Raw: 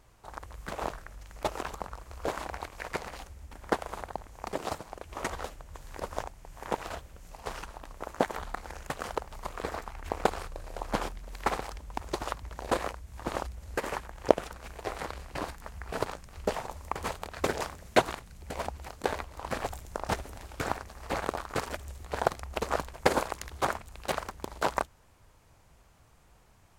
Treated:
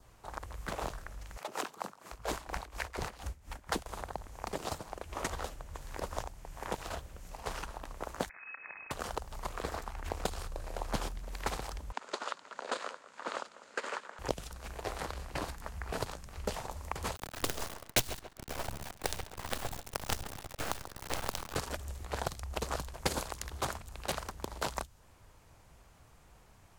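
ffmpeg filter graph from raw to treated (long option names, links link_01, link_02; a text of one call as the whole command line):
ffmpeg -i in.wav -filter_complex "[0:a]asettb=1/sr,asplit=3[link_01][link_02][link_03];[link_01]atrim=end=1.374[link_04];[link_02]atrim=start=1.37:end=3.86,asetpts=PTS-STARTPTS,afade=type=in:duration=0.004:curve=qsin,afade=type=out:start_time=2.486:duration=0.004:curve=qsin,acrossover=split=160|480[link_05][link_06][link_07];[link_06]adelay=30[link_08];[link_05]adelay=740[link_09];[link_09][link_08][link_07]amix=inputs=3:normalize=0,atrim=end_sample=109809,acontrast=52,aeval=exprs='val(0)*pow(10,-18*(0.5-0.5*cos(2*PI*4.2*n/s))/20)':channel_layout=same[link_10];[link_03]atrim=start=3.856[link_11];[link_04][link_10]acrossfade=duration=0.004:curve1=hsin:curve2=qsin[link_12];[link_12][link_11]acrossfade=duration=0.004:curve1=qsin:curve2=hsin,asettb=1/sr,asplit=3[link_13][link_14][link_15];[link_13]atrim=end=8.294[link_16];[link_14]atrim=start=8.29:end=8.91,asetpts=PTS-STARTPTS,afade=type=in:duration=0.004:curve=qsin,afade=type=out:start_time=0.616:duration=0.004:curve=qsin,acompressor=threshold=-39dB:ratio=5:attack=3.2:release=140:knee=1:detection=peak,tremolo=f=60:d=0.462,lowpass=frequency=2200:width_type=q:width=0.5098,lowpass=frequency=2200:width_type=q:width=0.6013,lowpass=frequency=2200:width_type=q:width=0.9,lowpass=frequency=2200:width_type=q:width=2.563,afreqshift=-2600[link_17];[link_15]atrim=start=8.906[link_18];[link_16][link_17]acrossfade=duration=0.004:curve1=hsin:curve2=qsin[link_19];[link_19][link_18]acrossfade=duration=0.004:curve1=qsin:curve2=hsin,asettb=1/sr,asplit=3[link_20][link_21][link_22];[link_20]atrim=end=11.924[link_23];[link_21]atrim=start=11.92:end=14.19,asetpts=PTS-STARTPTS,afade=type=in:duration=0.004:curve=qsin,afade=type=out:start_time=2.266:duration=0.004:curve=qsin,highpass=frequency=280:width=0.5412,highpass=frequency=280:width=1.3066,equalizer=frequency=330:width_type=q:width=4:gain=-10,equalizer=frequency=760:width_type=q:width=4:gain=-5,equalizer=frequency=1400:width_type=q:width=4:gain=6,equalizer=frequency=5700:width_type=q:width=4:gain=-5,lowpass=frequency=7400:width=0.5412,lowpass=frequency=7400:width=1.3066,aecho=1:1:197:0.0841,atrim=end_sample=100107[link_24];[link_22]atrim=start=14.186[link_25];[link_23][link_24]acrossfade=duration=0.004:curve1=hsin:curve2=qsin[link_26];[link_26][link_25]acrossfade=duration=0.004:curve1=qsin:curve2=hsin,asettb=1/sr,asplit=3[link_27][link_28][link_29];[link_27]atrim=end=17.164[link_30];[link_28]atrim=start=17.16:end=21.56,asetpts=PTS-STARTPTS,afade=type=in:duration=0.004:curve=qsin,afade=type=out:start_time=4.396:duration=0.004:curve=qsin,equalizer=frequency=170:width=6.9:gain=-13,acrusher=bits=4:dc=4:mix=0:aa=0.000001,asplit=2[link_31][link_32];[link_32]adelay=138,lowpass=frequency=4800:poles=1,volume=-14dB,asplit=2[link_33][link_34];[link_34]adelay=138,lowpass=frequency=4800:poles=1,volume=0.25,asplit=2[link_35][link_36];[link_36]adelay=138,lowpass=frequency=4800:poles=1,volume=0.25[link_37];[link_31][link_33][link_35][link_37]amix=inputs=4:normalize=0,atrim=end_sample=194040[link_38];[link_29]atrim=start=21.556[link_39];[link_30][link_38]acrossfade=duration=0.004:curve1=hsin:curve2=qsin[link_40];[link_40][link_39]acrossfade=duration=0.004:curve1=qsin:curve2=hsin,adynamicequalizer=threshold=0.00178:dfrequency=2200:dqfactor=3:tfrequency=2200:tqfactor=3:attack=5:release=100:ratio=0.375:range=2:mode=cutabove:tftype=bell,acrossover=split=170|3000[link_41][link_42][link_43];[link_42]acompressor=threshold=-36dB:ratio=4[link_44];[link_41][link_44][link_43]amix=inputs=3:normalize=0,volume=1dB" out.wav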